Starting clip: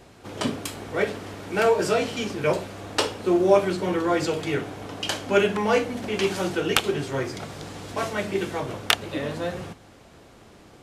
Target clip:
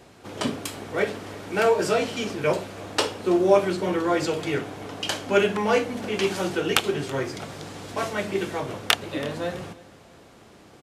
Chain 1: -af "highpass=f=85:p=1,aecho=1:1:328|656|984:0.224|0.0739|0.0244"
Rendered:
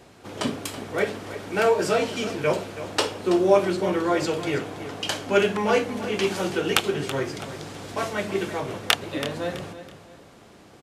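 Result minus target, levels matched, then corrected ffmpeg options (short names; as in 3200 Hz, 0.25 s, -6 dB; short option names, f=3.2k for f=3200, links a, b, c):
echo-to-direct +9 dB
-af "highpass=f=85:p=1,aecho=1:1:328|656:0.0794|0.0262"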